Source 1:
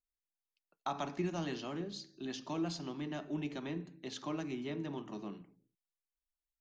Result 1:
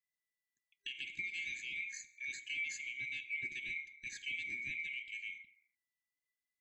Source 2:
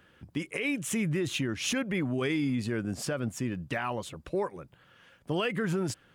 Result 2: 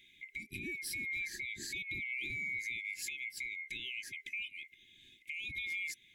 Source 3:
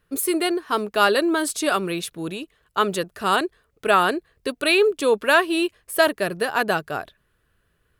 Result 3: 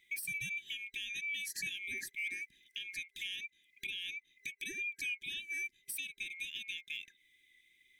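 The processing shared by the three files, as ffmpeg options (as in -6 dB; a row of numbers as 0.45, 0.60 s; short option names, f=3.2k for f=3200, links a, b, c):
-af "afftfilt=real='real(if(lt(b,920),b+92*(1-2*mod(floor(b/92),2)),b),0)':imag='imag(if(lt(b,920),b+92*(1-2*mod(floor(b/92),2)),b),0)':win_size=2048:overlap=0.75,adynamicequalizer=threshold=0.00224:dfrequency=10000:dqfactor=7.7:tfrequency=10000:tqfactor=7.7:attack=5:release=100:ratio=0.375:range=3:mode=cutabove:tftype=bell,acompressor=threshold=-34dB:ratio=4,alimiter=level_in=4.5dB:limit=-24dB:level=0:latency=1:release=391,volume=-4.5dB,afftfilt=real='re*(1-between(b*sr/4096,400,1600))':imag='im*(1-between(b*sr/4096,400,1600))':win_size=4096:overlap=0.75,volume=-1.5dB"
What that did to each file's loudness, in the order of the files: 0.0, -7.5, -18.0 LU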